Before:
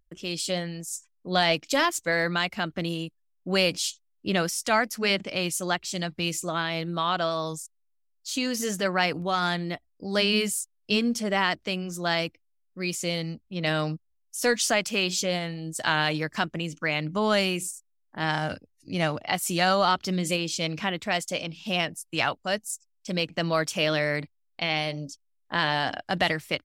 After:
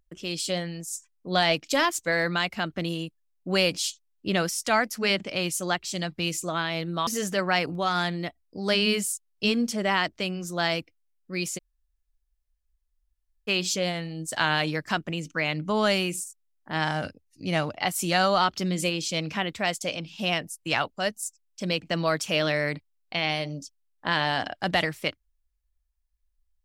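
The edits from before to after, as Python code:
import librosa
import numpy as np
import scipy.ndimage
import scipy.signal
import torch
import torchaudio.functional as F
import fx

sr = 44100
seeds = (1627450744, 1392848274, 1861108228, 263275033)

y = fx.edit(x, sr, fx.cut(start_s=7.07, length_s=1.47),
    fx.room_tone_fill(start_s=13.05, length_s=1.9, crossfade_s=0.02), tone=tone)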